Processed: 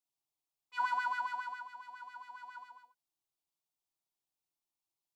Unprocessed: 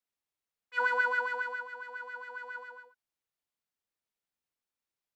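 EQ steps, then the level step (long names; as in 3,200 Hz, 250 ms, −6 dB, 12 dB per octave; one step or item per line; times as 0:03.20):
dynamic equaliser 1,500 Hz, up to +5 dB, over −42 dBFS, Q 1.8
phaser with its sweep stopped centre 330 Hz, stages 8
0.0 dB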